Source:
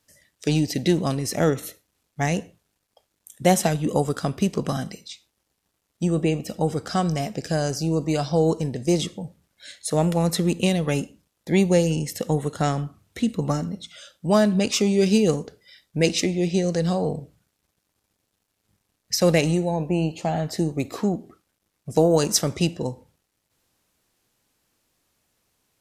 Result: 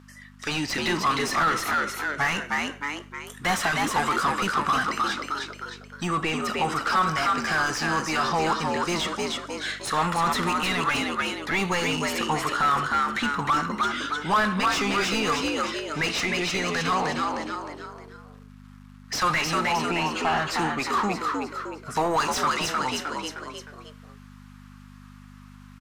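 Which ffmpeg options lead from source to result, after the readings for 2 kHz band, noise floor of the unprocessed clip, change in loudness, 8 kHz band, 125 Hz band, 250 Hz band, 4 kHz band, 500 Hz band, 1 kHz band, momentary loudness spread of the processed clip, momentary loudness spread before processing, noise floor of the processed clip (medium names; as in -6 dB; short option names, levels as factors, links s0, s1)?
+9.5 dB, -76 dBFS, -2.0 dB, -3.0 dB, -10.5 dB, -7.0 dB, +3.0 dB, -7.5 dB, +8.0 dB, 9 LU, 13 LU, -47 dBFS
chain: -filter_complex "[0:a]lowshelf=f=800:t=q:w=3:g=-13,asplit=2[s0][s1];[s1]asplit=4[s2][s3][s4][s5];[s2]adelay=309,afreqshift=73,volume=0.501[s6];[s3]adelay=618,afreqshift=146,volume=0.186[s7];[s4]adelay=927,afreqshift=219,volume=0.0684[s8];[s5]adelay=1236,afreqshift=292,volume=0.0254[s9];[s6][s7][s8][s9]amix=inputs=4:normalize=0[s10];[s0][s10]amix=inputs=2:normalize=0,aeval=exprs='val(0)+0.00316*(sin(2*PI*50*n/s)+sin(2*PI*2*50*n/s)/2+sin(2*PI*3*50*n/s)/3+sin(2*PI*4*50*n/s)/4+sin(2*PI*5*50*n/s)/5)':c=same,dynaudnorm=f=390:g=3:m=1.58,asplit=2[s11][s12];[s12]highpass=f=720:p=1,volume=22.4,asoftclip=type=tanh:threshold=0.708[s13];[s11][s13]amix=inputs=2:normalize=0,lowpass=f=1000:p=1,volume=0.501,asplit=2[s14][s15];[s15]asoftclip=type=tanh:threshold=0.0562,volume=0.596[s16];[s14][s16]amix=inputs=2:normalize=0,volume=0.422"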